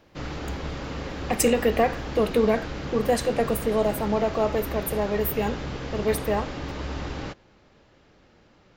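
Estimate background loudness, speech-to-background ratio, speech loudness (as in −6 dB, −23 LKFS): −34.0 LKFS, 8.5 dB, −25.5 LKFS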